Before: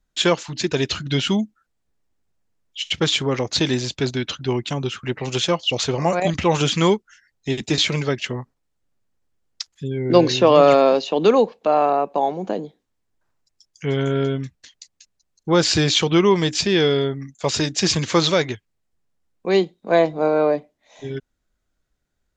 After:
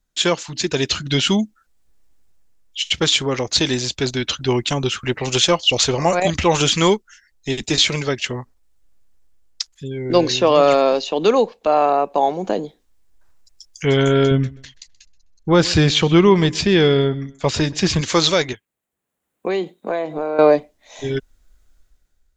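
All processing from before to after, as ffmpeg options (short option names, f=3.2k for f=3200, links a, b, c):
-filter_complex "[0:a]asettb=1/sr,asplit=3[a][b][c];[a]atrim=end=14.314[d];[b]atrim=start=14.31:end=18.01,asetpts=PTS-STARTPTS,afade=t=in:d=0.004:c=qsin,afade=t=out:st=3.696:d=0.004:c=qsin,bass=f=250:g=6,treble=f=4k:g=-11,aecho=1:1:128|256:0.0891|0.0258,atrim=end_sample=163170[e];[c]atrim=start=18.006[f];[d][e]acrossfade=d=0.004:c1=hsin:c2=qsin[g];[g][f]acrossfade=d=0.004:c1=qsin:c2=hsin,asettb=1/sr,asplit=3[h][i][j];[h]atrim=end=18.534[k];[i]atrim=start=18.53:end=20.39,asetpts=PTS-STARTPTS,afade=t=in:d=0.004:c=qsin,afade=t=out:st=1.856:d=0.004:c=qsin,highpass=180,acompressor=threshold=-25dB:ratio=10:attack=3.2:release=140:knee=1:detection=peak,equalizer=f=5.2k:t=o:w=0.82:g=-12.5[l];[j]atrim=start=20.386[m];[k][l]acrossfade=d=0.004:c1=hsin:c2=qsin[n];[n][m]acrossfade=d=0.004:c1=qsin:c2=hsin,highshelf=f=4.7k:g=7,dynaudnorm=f=200:g=7:m=11.5dB,asubboost=boost=5:cutoff=59,volume=-1dB"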